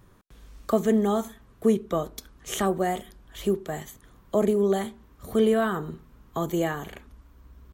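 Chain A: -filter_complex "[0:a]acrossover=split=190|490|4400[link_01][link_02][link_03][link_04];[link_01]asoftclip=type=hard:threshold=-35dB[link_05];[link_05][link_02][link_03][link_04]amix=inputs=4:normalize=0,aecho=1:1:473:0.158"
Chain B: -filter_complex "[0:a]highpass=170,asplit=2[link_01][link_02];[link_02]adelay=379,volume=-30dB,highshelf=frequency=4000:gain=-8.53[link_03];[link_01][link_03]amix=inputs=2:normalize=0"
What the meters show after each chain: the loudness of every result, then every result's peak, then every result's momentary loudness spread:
−27.0, −27.0 LKFS; −10.5, −9.5 dBFS; 17, 18 LU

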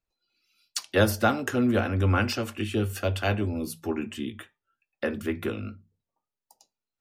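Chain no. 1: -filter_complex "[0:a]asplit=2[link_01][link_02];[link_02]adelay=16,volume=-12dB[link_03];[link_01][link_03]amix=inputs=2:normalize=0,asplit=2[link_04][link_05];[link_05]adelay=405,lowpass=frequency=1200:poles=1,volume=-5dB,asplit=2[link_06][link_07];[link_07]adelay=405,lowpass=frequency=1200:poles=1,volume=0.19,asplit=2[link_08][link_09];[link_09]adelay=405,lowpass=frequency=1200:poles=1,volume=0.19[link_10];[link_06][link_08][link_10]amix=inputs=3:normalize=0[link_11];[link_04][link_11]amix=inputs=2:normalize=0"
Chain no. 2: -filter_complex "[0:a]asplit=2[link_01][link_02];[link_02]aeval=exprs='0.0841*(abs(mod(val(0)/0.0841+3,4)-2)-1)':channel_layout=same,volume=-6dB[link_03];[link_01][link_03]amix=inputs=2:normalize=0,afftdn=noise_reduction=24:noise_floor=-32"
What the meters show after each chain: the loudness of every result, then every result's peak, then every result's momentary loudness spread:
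−27.0, −25.5 LKFS; −8.5, −9.0 dBFS; 15, 12 LU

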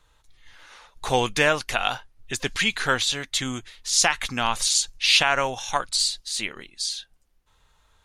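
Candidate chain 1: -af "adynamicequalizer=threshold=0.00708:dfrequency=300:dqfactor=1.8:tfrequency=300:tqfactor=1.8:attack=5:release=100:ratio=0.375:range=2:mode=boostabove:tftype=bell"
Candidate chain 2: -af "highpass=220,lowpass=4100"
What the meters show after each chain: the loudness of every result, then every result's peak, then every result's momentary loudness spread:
−23.0, −25.0 LKFS; −4.0, −4.0 dBFS; 12, 14 LU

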